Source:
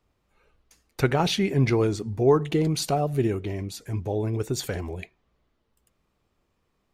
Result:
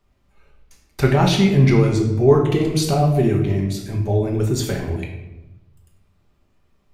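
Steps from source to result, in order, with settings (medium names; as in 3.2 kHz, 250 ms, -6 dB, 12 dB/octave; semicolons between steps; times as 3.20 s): bass shelf 100 Hz +5.5 dB; band-stop 500 Hz, Q 16; simulated room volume 370 m³, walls mixed, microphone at 1.2 m; trim +2.5 dB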